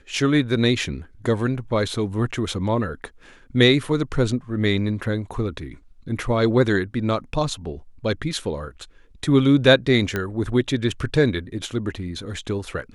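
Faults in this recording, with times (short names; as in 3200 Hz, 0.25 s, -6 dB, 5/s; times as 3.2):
10.16 pop -11 dBFS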